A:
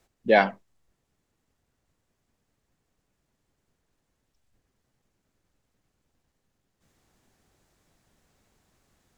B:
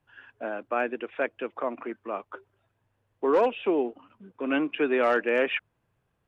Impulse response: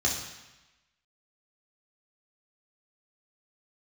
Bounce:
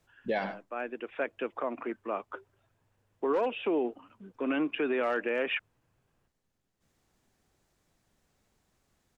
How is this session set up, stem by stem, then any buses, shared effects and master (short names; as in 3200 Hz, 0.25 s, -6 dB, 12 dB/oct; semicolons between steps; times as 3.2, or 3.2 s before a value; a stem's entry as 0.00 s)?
-5.0 dB, 0.00 s, no send, echo send -17.5 dB, dry
-0.5 dB, 0.00 s, no send, no echo send, auto duck -13 dB, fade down 0.25 s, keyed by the first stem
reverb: off
echo: echo 0.101 s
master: limiter -21.5 dBFS, peak gain reduction 10 dB